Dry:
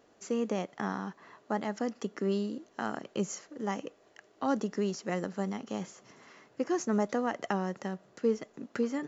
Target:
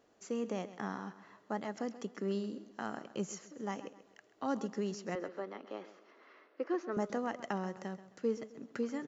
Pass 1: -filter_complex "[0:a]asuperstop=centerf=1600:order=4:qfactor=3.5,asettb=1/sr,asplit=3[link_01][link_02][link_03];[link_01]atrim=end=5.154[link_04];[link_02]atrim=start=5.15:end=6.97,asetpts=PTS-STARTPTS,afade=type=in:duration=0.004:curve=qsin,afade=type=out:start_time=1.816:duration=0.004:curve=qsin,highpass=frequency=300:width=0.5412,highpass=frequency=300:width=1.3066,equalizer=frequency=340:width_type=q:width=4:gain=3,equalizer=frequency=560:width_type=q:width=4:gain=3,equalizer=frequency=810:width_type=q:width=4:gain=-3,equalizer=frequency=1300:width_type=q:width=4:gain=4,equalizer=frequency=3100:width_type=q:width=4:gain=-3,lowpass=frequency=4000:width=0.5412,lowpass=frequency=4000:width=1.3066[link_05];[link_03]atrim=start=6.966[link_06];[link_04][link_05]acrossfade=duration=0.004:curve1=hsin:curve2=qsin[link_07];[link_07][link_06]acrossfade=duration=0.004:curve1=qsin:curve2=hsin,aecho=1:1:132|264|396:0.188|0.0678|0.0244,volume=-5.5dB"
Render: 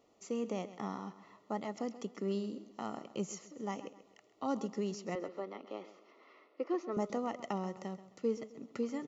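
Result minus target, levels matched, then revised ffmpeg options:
2,000 Hz band −5.0 dB
-filter_complex "[0:a]asettb=1/sr,asplit=3[link_01][link_02][link_03];[link_01]atrim=end=5.154[link_04];[link_02]atrim=start=5.15:end=6.97,asetpts=PTS-STARTPTS,afade=type=in:duration=0.004:curve=qsin,afade=type=out:start_time=1.816:duration=0.004:curve=qsin,highpass=frequency=300:width=0.5412,highpass=frequency=300:width=1.3066,equalizer=frequency=340:width_type=q:width=4:gain=3,equalizer=frequency=560:width_type=q:width=4:gain=3,equalizer=frequency=810:width_type=q:width=4:gain=-3,equalizer=frequency=1300:width_type=q:width=4:gain=4,equalizer=frequency=3100:width_type=q:width=4:gain=-3,lowpass=frequency=4000:width=0.5412,lowpass=frequency=4000:width=1.3066[link_05];[link_03]atrim=start=6.966[link_06];[link_04][link_05]acrossfade=duration=0.004:curve1=hsin:curve2=qsin[link_07];[link_07][link_06]acrossfade=duration=0.004:curve1=qsin:curve2=hsin,aecho=1:1:132|264|396:0.188|0.0678|0.0244,volume=-5.5dB"

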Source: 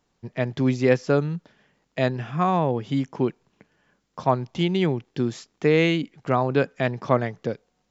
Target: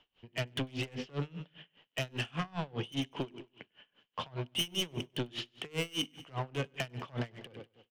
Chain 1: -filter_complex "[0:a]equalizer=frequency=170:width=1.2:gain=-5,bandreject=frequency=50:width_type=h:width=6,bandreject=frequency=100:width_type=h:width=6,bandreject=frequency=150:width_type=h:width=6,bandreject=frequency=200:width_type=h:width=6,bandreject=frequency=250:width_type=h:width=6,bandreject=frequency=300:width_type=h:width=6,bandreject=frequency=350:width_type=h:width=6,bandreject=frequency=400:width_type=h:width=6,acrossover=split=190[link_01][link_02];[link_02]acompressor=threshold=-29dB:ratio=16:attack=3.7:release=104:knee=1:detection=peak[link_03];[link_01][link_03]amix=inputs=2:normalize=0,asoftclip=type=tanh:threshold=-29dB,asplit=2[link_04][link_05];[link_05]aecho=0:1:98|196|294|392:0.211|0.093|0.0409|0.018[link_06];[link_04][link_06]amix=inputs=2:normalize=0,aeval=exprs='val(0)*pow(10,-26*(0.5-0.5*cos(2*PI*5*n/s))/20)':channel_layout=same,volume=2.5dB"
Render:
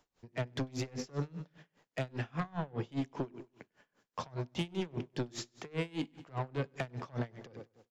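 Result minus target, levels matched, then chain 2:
4,000 Hz band −9.5 dB
-filter_complex "[0:a]equalizer=frequency=170:width=1.2:gain=-5,bandreject=frequency=50:width_type=h:width=6,bandreject=frequency=100:width_type=h:width=6,bandreject=frequency=150:width_type=h:width=6,bandreject=frequency=200:width_type=h:width=6,bandreject=frequency=250:width_type=h:width=6,bandreject=frequency=300:width_type=h:width=6,bandreject=frequency=350:width_type=h:width=6,bandreject=frequency=400:width_type=h:width=6,acrossover=split=190[link_01][link_02];[link_02]acompressor=threshold=-29dB:ratio=16:attack=3.7:release=104:knee=1:detection=peak,lowpass=frequency=3000:width_type=q:width=11[link_03];[link_01][link_03]amix=inputs=2:normalize=0,asoftclip=type=tanh:threshold=-29dB,asplit=2[link_04][link_05];[link_05]aecho=0:1:98|196|294|392:0.211|0.093|0.0409|0.018[link_06];[link_04][link_06]amix=inputs=2:normalize=0,aeval=exprs='val(0)*pow(10,-26*(0.5-0.5*cos(2*PI*5*n/s))/20)':channel_layout=same,volume=2.5dB"

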